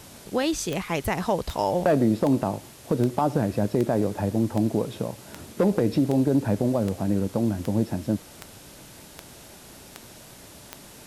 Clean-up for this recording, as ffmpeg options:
-af "adeclick=t=4,afftdn=nr=23:nf=-47"

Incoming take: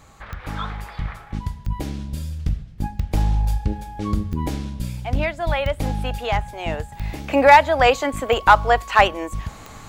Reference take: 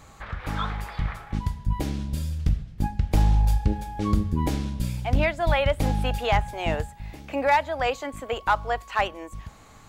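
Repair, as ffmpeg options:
-af "adeclick=t=4,asetnsamples=n=441:p=0,asendcmd='6.92 volume volume -10dB',volume=0dB"

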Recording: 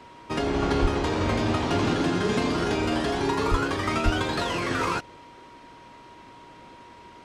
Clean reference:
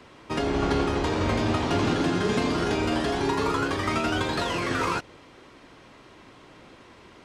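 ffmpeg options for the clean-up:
-filter_complex "[0:a]bandreject=f=950:w=30,asplit=3[a][b][c];[a]afade=t=out:st=0.81:d=0.02[d];[b]highpass=f=140:w=0.5412,highpass=f=140:w=1.3066,afade=t=in:st=0.81:d=0.02,afade=t=out:st=0.93:d=0.02[e];[c]afade=t=in:st=0.93:d=0.02[f];[d][e][f]amix=inputs=3:normalize=0,asplit=3[g][h][i];[g]afade=t=out:st=3.5:d=0.02[j];[h]highpass=f=140:w=0.5412,highpass=f=140:w=1.3066,afade=t=in:st=3.5:d=0.02,afade=t=out:st=3.62:d=0.02[k];[i]afade=t=in:st=3.62:d=0.02[l];[j][k][l]amix=inputs=3:normalize=0,asplit=3[m][n][o];[m]afade=t=out:st=4.04:d=0.02[p];[n]highpass=f=140:w=0.5412,highpass=f=140:w=1.3066,afade=t=in:st=4.04:d=0.02,afade=t=out:st=4.16:d=0.02[q];[o]afade=t=in:st=4.16:d=0.02[r];[p][q][r]amix=inputs=3:normalize=0"

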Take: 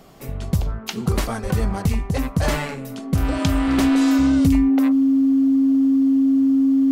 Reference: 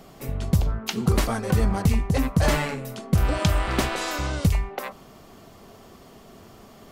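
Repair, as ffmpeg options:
-filter_complex "[0:a]bandreject=f=270:w=30,asplit=3[a][b][c];[a]afade=t=out:st=1.42:d=0.02[d];[b]highpass=f=140:w=0.5412,highpass=f=140:w=1.3066,afade=t=in:st=1.42:d=0.02,afade=t=out:st=1.54:d=0.02[e];[c]afade=t=in:st=1.54:d=0.02[f];[d][e][f]amix=inputs=3:normalize=0"

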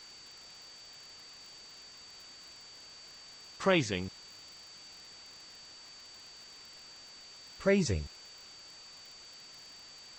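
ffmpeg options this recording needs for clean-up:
-af "adeclick=t=4,bandreject=f=4.6k:w=30,afwtdn=0.0025"

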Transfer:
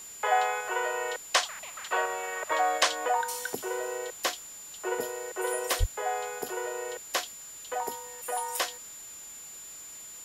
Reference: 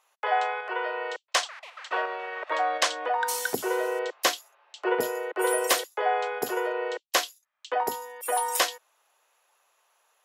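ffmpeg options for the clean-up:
-filter_complex "[0:a]bandreject=f=7.1k:w=30,asplit=3[a][b][c];[a]afade=t=out:st=5.79:d=0.02[d];[b]highpass=f=140:w=0.5412,highpass=f=140:w=1.3066,afade=t=in:st=5.79:d=0.02,afade=t=out:st=5.91:d=0.02[e];[c]afade=t=in:st=5.91:d=0.02[f];[d][e][f]amix=inputs=3:normalize=0,afwtdn=0.0032,asetnsamples=n=441:p=0,asendcmd='3.21 volume volume 6dB',volume=0dB"

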